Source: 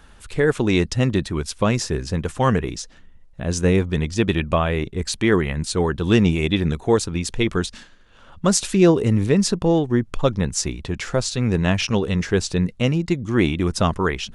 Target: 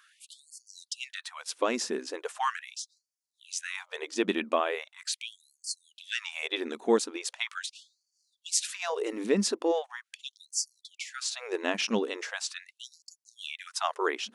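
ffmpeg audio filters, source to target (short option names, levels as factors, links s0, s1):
-af "afftfilt=real='re*gte(b*sr/1024,200*pow(4400/200,0.5+0.5*sin(2*PI*0.4*pts/sr)))':imag='im*gte(b*sr/1024,200*pow(4400/200,0.5+0.5*sin(2*PI*0.4*pts/sr)))':win_size=1024:overlap=0.75,volume=0.501"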